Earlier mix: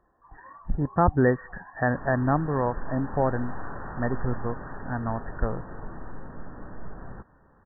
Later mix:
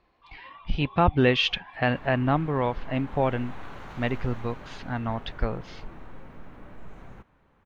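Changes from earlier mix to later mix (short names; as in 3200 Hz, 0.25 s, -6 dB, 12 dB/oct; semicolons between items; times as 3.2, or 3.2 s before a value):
background -5.0 dB; master: remove brick-wall FIR low-pass 1900 Hz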